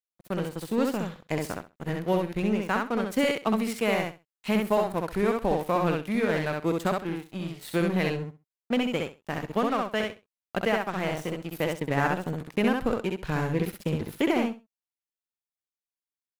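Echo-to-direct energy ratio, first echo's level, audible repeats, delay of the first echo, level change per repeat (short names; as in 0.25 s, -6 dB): -3.0 dB, -3.0 dB, 3, 65 ms, -15.0 dB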